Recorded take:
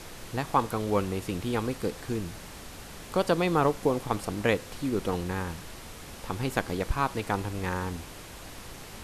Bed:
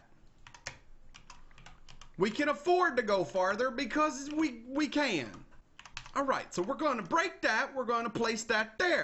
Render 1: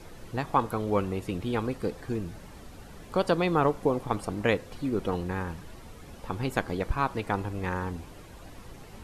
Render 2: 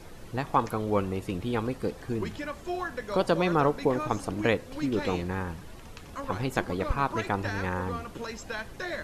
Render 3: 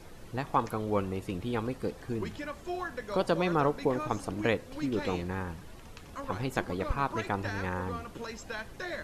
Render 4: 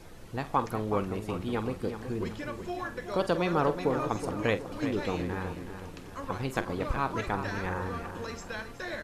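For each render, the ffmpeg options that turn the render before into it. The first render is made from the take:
ffmpeg -i in.wav -af "afftdn=noise_reduction=10:noise_floor=-44" out.wav
ffmpeg -i in.wav -i bed.wav -filter_complex "[1:a]volume=-6dB[link_01];[0:a][link_01]amix=inputs=2:normalize=0" out.wav
ffmpeg -i in.wav -af "volume=-3dB" out.wav
ffmpeg -i in.wav -filter_complex "[0:a]asplit=2[link_01][link_02];[link_02]adelay=46,volume=-13dB[link_03];[link_01][link_03]amix=inputs=2:normalize=0,asplit=2[link_04][link_05];[link_05]adelay=372,lowpass=frequency=3600:poles=1,volume=-9dB,asplit=2[link_06][link_07];[link_07]adelay=372,lowpass=frequency=3600:poles=1,volume=0.46,asplit=2[link_08][link_09];[link_09]adelay=372,lowpass=frequency=3600:poles=1,volume=0.46,asplit=2[link_10][link_11];[link_11]adelay=372,lowpass=frequency=3600:poles=1,volume=0.46,asplit=2[link_12][link_13];[link_13]adelay=372,lowpass=frequency=3600:poles=1,volume=0.46[link_14];[link_04][link_06][link_08][link_10][link_12][link_14]amix=inputs=6:normalize=0" out.wav

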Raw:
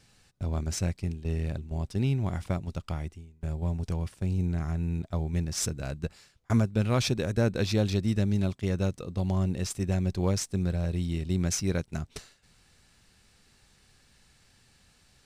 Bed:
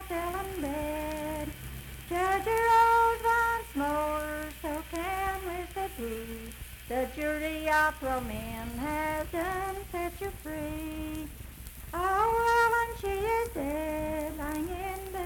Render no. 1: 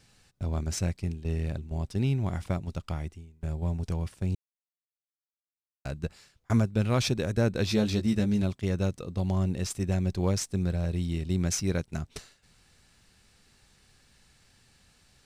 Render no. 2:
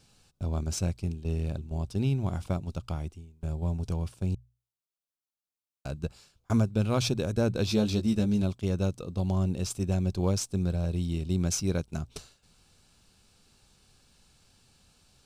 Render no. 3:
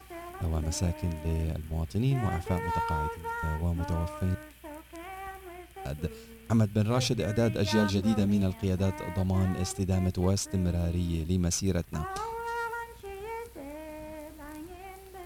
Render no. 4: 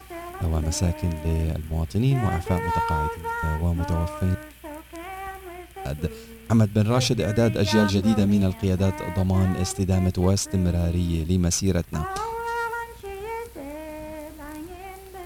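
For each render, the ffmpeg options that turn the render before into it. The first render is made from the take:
ffmpeg -i in.wav -filter_complex "[0:a]asettb=1/sr,asplit=3[link_01][link_02][link_03];[link_01]atrim=end=7.664[link_04];[link_02]atrim=start=7.66:end=8.42,asetpts=PTS-STARTPTS,afade=type=in:duration=0.004:curve=qsin,afade=type=out:start_time=0.756:duration=0.004:curve=qsin,asplit=2[link_05][link_06];[link_06]adelay=14,volume=-4.5dB[link_07];[link_05][link_07]amix=inputs=2:normalize=0,atrim=end_sample=33516[link_08];[link_03]atrim=start=8.416[link_09];[link_04][link_08]acrossfade=duration=0.004:curve1=hsin:curve2=qsin[link_10];[link_10][link_09]acrossfade=duration=0.004:curve1=qsin:curve2=hsin,asplit=3[link_11][link_12][link_13];[link_11]atrim=end=4.35,asetpts=PTS-STARTPTS,afade=type=out:start_time=4.346:duration=0.004:curve=hsin[link_14];[link_12]atrim=start=4.35:end=5.85,asetpts=PTS-STARTPTS,volume=0[link_15];[link_13]atrim=start=5.85,asetpts=PTS-STARTPTS,afade=type=in:duration=0.004:curve=hsin[link_16];[link_14][link_15][link_16]concat=n=3:v=0:a=1" out.wav
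ffmpeg -i in.wav -af "equalizer=frequency=1900:width=3.8:gain=-12,bandreject=frequency=60:width_type=h:width=6,bandreject=frequency=120:width_type=h:width=6" out.wav
ffmpeg -i in.wav -i bed.wav -filter_complex "[1:a]volume=-9.5dB[link_01];[0:a][link_01]amix=inputs=2:normalize=0" out.wav
ffmpeg -i in.wav -af "volume=6dB" out.wav

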